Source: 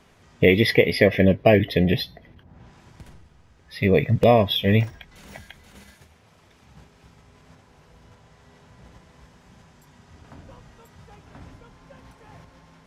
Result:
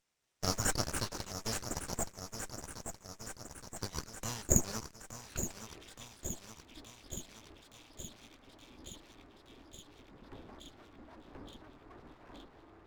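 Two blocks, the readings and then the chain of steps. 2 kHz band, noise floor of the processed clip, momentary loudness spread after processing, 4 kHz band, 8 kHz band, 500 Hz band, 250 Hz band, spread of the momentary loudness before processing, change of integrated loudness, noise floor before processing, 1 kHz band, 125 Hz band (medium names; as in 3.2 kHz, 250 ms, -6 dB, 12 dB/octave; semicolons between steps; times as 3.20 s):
-20.0 dB, -61 dBFS, 23 LU, -13.5 dB, no reading, -24.0 dB, -19.5 dB, 8 LU, -19.0 dB, -56 dBFS, -15.0 dB, -18.0 dB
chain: local Wiener filter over 15 samples; high-pass sweep 3.4 kHz -> 130 Hz, 5.03–5.76 s; on a send: feedback echo behind a high-pass 871 ms, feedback 65%, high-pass 2.4 kHz, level -8 dB; on the sum: full-wave rectifier; Chebyshev shaper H 8 -26 dB, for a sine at -3.5 dBFS; trim -3.5 dB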